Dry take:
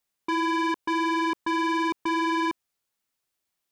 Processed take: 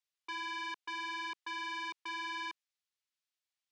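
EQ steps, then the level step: band-pass 320–3600 Hz; differentiator; +2.5 dB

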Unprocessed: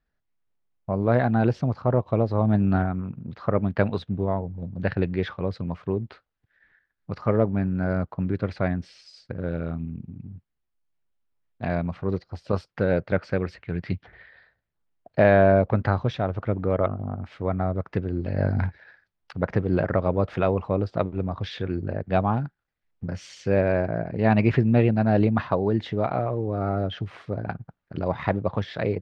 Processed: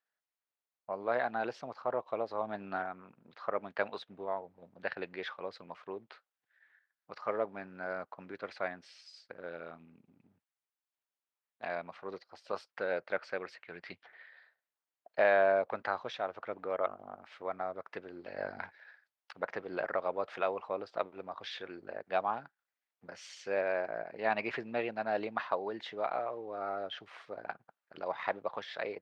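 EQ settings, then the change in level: high-pass 650 Hz 12 dB/octave; -5.0 dB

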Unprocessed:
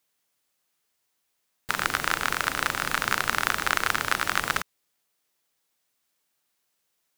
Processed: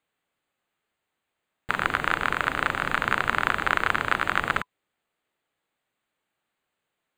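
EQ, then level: boxcar filter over 8 samples; band-stop 1 kHz, Q 27; +3.0 dB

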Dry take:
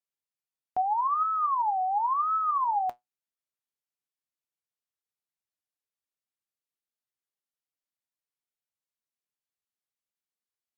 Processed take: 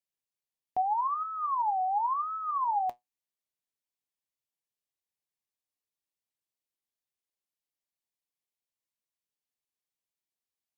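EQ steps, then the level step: peaking EQ 1.4 kHz -14.5 dB 0.25 oct; -1.0 dB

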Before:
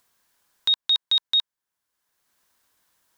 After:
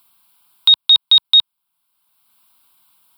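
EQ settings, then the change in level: high-pass 110 Hz 12 dB/octave; treble shelf 3.7 kHz +6 dB; static phaser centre 1.8 kHz, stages 6; +8.5 dB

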